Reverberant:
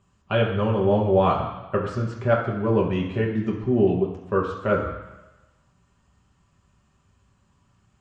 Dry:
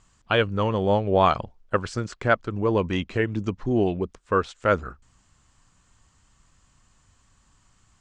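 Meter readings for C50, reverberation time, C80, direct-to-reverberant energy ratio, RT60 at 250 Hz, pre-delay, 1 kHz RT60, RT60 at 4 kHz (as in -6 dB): 6.0 dB, 1.1 s, 8.0 dB, -3.0 dB, 1.0 s, 3 ms, 1.1 s, 1.1 s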